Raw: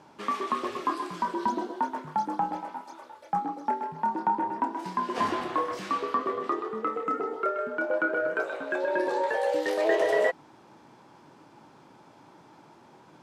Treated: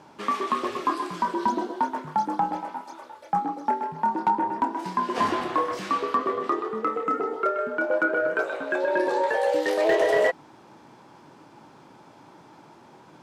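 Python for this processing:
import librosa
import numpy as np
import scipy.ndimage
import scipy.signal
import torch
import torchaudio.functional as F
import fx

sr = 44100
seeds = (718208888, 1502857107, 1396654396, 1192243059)

y = np.clip(10.0 ** (17.5 / 20.0) * x, -1.0, 1.0) / 10.0 ** (17.5 / 20.0)
y = F.gain(torch.from_numpy(y), 3.5).numpy()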